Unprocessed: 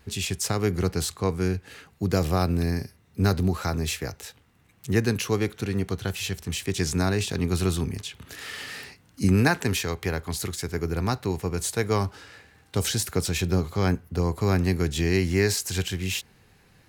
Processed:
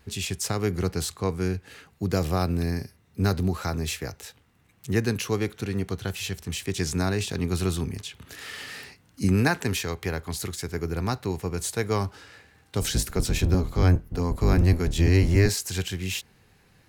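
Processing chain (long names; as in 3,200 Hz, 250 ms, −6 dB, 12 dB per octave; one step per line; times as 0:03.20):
0:12.81–0:15.49: sub-octave generator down 1 octave, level +4 dB
level −1.5 dB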